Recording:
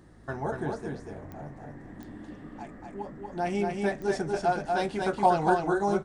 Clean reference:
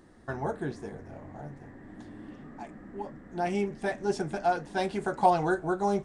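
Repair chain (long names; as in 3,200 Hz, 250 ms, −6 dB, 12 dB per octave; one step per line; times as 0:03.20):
click removal
hum removal 54.2 Hz, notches 3
echo removal 238 ms −3.5 dB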